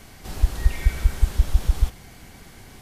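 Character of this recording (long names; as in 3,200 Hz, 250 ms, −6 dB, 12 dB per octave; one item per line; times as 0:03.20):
background noise floor −46 dBFS
spectral slope −5.0 dB per octave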